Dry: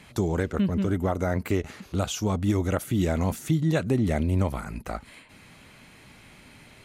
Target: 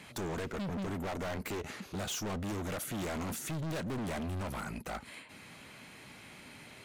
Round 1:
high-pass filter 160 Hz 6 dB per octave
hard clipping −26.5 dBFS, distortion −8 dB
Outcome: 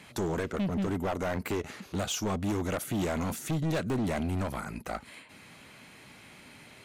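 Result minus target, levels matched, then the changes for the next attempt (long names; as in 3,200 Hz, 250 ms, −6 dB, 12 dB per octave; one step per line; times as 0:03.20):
hard clipping: distortion −5 dB
change: hard clipping −35 dBFS, distortion −3 dB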